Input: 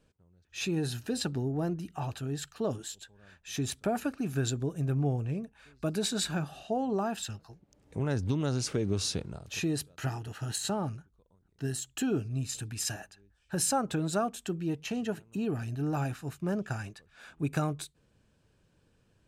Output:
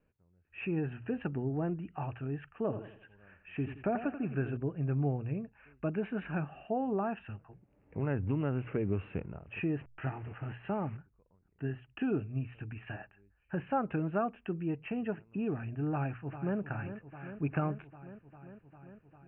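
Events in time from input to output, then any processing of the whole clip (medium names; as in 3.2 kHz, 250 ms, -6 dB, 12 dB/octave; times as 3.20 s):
2.56–4.57 s: feedback delay 86 ms, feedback 41%, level -10.5 dB
9.80–10.97 s: send-on-delta sampling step -45.5 dBFS
15.92–16.58 s: echo throw 400 ms, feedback 80%, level -11 dB
whole clip: steep low-pass 2.8 kHz 96 dB/octave; hum notches 60/120 Hz; level rider gain up to 4 dB; trim -6 dB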